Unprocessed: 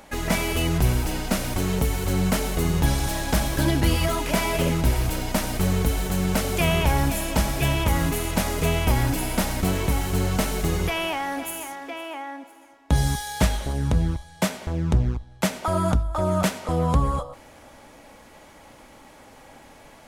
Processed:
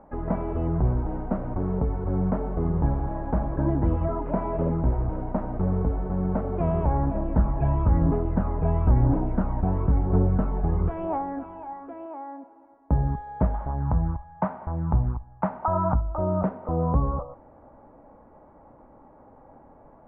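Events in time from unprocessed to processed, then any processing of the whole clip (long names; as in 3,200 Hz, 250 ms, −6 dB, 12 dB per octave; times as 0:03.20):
0:07.15–0:12.06: phase shifter 1 Hz, delay 1.3 ms, feedback 46%
0:13.54–0:16.01: drawn EQ curve 140 Hz 0 dB, 460 Hz −7 dB, 870 Hz +8 dB, 4,400 Hz +2 dB
whole clip: low-pass filter 1,100 Hz 24 dB per octave; level −2 dB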